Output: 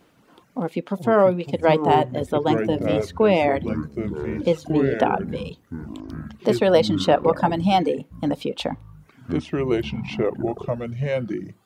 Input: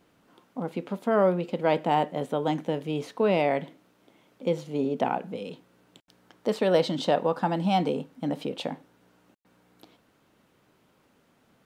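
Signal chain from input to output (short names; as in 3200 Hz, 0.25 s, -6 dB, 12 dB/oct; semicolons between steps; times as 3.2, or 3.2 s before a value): echoes that change speed 0.176 s, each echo -6 st, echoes 3, each echo -6 dB; reverb removal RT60 0.84 s; gain +6.5 dB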